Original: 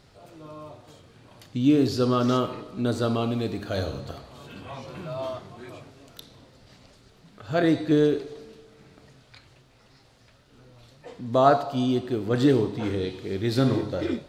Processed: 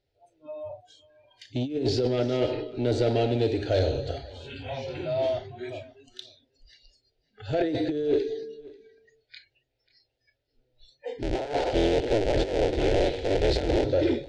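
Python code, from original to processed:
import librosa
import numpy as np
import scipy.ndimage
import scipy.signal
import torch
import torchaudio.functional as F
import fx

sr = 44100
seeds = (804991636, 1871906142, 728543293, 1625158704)

y = fx.cycle_switch(x, sr, every=3, mode='inverted', at=(11.22, 13.85))
y = fx.noise_reduce_blind(y, sr, reduce_db=28)
y = fx.over_compress(y, sr, threshold_db=-24.0, ratio=-0.5)
y = 10.0 ** (-22.0 / 20.0) * np.tanh(y / 10.0 ** (-22.0 / 20.0))
y = scipy.ndimage.gaussian_filter1d(y, 1.6, mode='constant')
y = fx.fixed_phaser(y, sr, hz=470.0, stages=4)
y = y + 10.0 ** (-22.0 / 20.0) * np.pad(y, (int(539 * sr / 1000.0), 0))[:len(y)]
y = y * 10.0 ** (7.0 / 20.0)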